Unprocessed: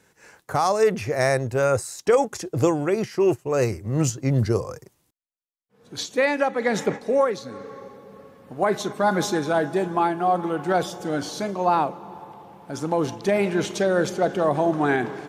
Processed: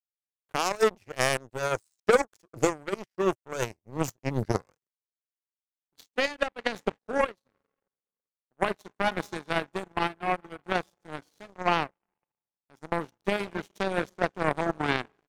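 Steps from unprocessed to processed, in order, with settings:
power curve on the samples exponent 3
soft clipping −10 dBFS, distortion −23 dB
level +4.5 dB

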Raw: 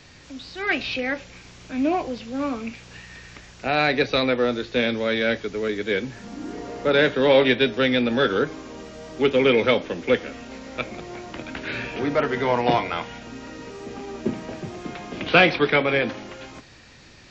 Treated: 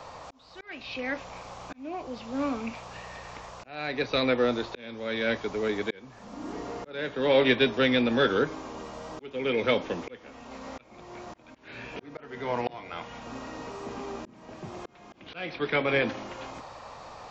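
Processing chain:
noise in a band 470–1,200 Hz −42 dBFS
volume swells 667 ms
level −3 dB

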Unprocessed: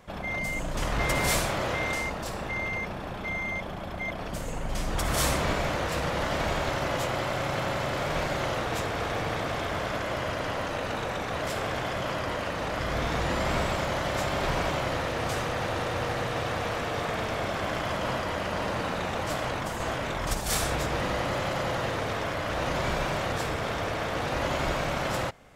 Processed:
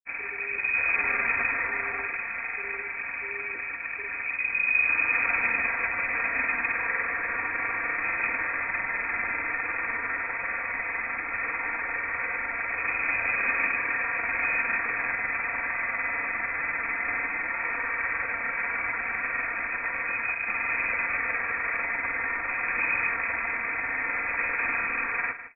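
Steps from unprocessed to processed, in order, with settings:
running median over 15 samples
comb filter 4.5 ms, depth 93%
noise that follows the level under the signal 13 dB
granular cloud, pitch spread up and down by 0 semitones
on a send: single-tap delay 155 ms −12 dB
on the sum: voice inversion scrambler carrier 2,500 Hz

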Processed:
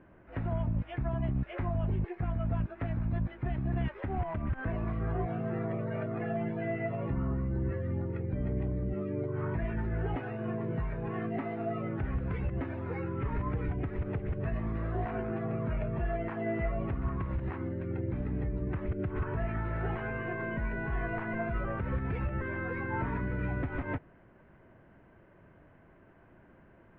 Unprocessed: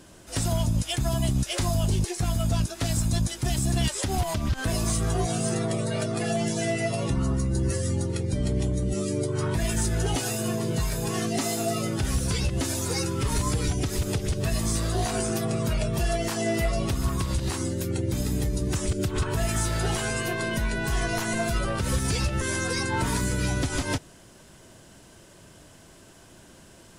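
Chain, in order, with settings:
Butterworth low-pass 2,200 Hz 36 dB per octave
level −6.5 dB

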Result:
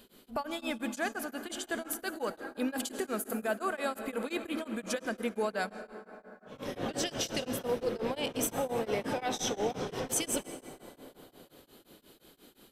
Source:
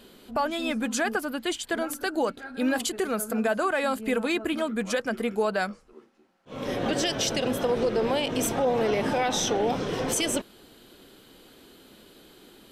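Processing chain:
high-shelf EQ 10,000 Hz +9.5 dB
on a send at −9.5 dB: convolution reverb RT60 4.4 s, pre-delay 73 ms
on the sum: tremolo along a rectified sine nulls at 5.7 Hz
level −5.5 dB

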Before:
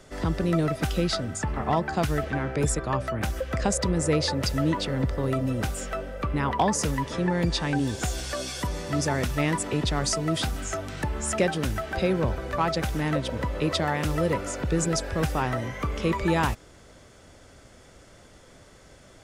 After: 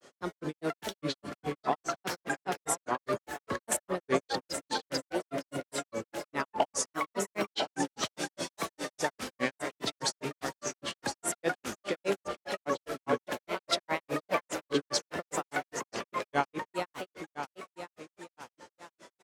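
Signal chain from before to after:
high-pass filter 330 Hz 12 dB per octave
on a send: repeating echo 489 ms, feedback 58%, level −5 dB
on the sum: granular cloud 126 ms, grains 4.9 per second, spray 36 ms, pitch spread up and down by 3 semitones

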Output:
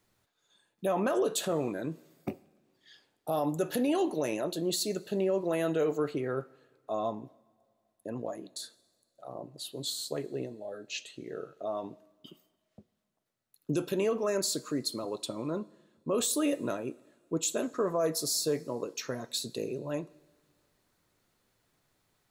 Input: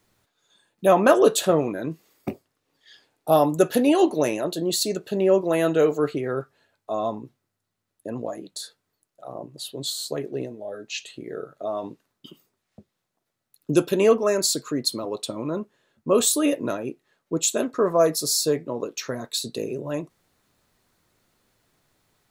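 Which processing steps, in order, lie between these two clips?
brickwall limiter −14.5 dBFS, peak gain reduction 11.5 dB
convolution reverb, pre-delay 3 ms, DRR 19 dB
level −6 dB

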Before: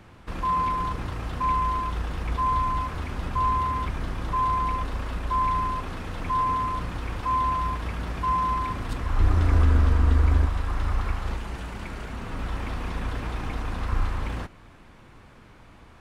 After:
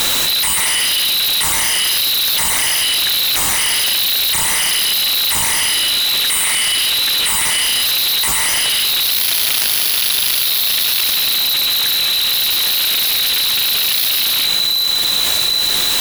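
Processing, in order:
0:06.21–0:07.81: high-pass filter 56 Hz 24 dB per octave
echo with a time of its own for lows and highs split 790 Hz, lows 777 ms, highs 99 ms, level −14 dB
voice inversion scrambler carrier 4,000 Hz
high-shelf EQ 2,500 Hz +5 dB
background noise white −43 dBFS
sine wavefolder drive 14 dB, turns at −13 dBFS
envelope flattener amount 100%

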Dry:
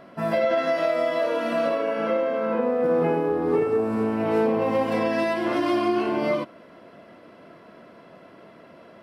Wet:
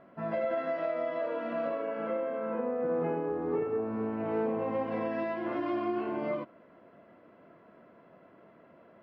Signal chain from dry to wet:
low-pass filter 2,100 Hz 12 dB per octave
level −9 dB

